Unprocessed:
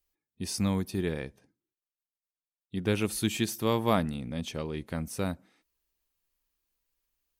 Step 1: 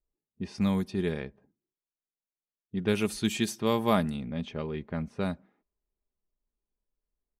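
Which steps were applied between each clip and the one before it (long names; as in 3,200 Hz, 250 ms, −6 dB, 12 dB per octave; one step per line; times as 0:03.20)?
comb filter 4.9 ms, depth 36%
low-pass that shuts in the quiet parts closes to 610 Hz, open at −23.5 dBFS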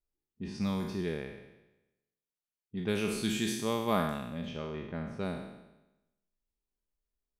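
peak hold with a decay on every bin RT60 0.97 s
level −6 dB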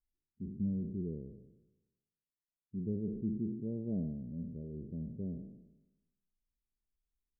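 Gaussian smoothing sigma 25 samples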